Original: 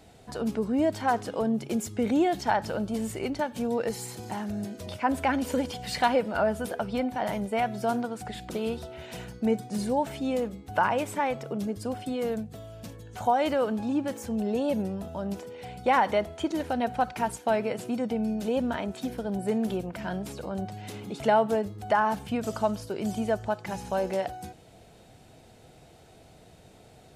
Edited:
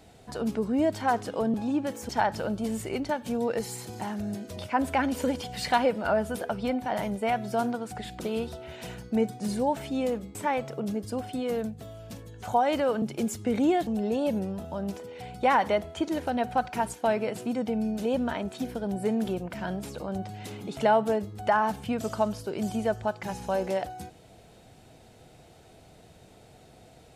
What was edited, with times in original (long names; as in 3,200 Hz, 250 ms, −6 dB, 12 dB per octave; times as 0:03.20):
0:01.54–0:02.39: swap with 0:13.75–0:14.30
0:10.65–0:11.08: remove